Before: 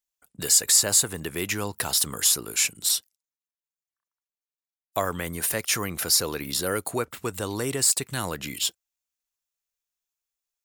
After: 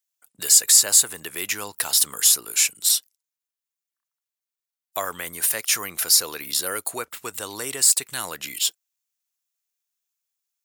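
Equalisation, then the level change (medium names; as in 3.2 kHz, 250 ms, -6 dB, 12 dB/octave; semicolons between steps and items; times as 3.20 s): tilt EQ +1.5 dB/octave; bass shelf 330 Hz -10 dB; 0.0 dB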